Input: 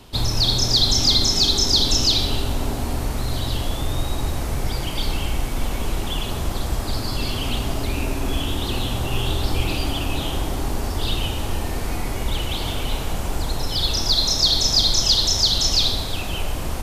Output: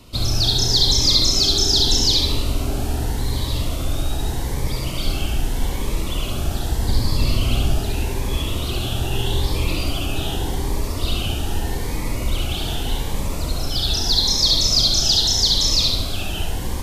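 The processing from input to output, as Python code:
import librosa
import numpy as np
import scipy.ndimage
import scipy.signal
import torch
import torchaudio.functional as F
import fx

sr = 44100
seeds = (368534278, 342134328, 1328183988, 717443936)

y = fx.low_shelf(x, sr, hz=210.0, db=6.5, at=(6.81, 7.74))
y = y + 10.0 ** (-3.5 / 20.0) * np.pad(y, (int(70 * sr / 1000.0), 0))[:len(y)]
y = fx.notch_cascade(y, sr, direction='rising', hz=0.82)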